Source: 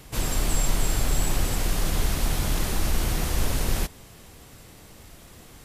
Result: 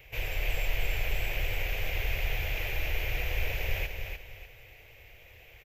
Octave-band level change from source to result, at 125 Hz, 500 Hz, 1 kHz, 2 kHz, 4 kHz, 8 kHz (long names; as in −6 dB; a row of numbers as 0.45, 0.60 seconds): −7.5, −5.5, −9.5, +2.5, −5.5, −19.5 decibels